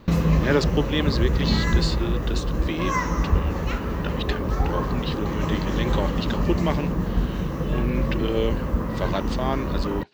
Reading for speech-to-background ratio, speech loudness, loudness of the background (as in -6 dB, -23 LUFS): -4.0 dB, -29.5 LUFS, -25.5 LUFS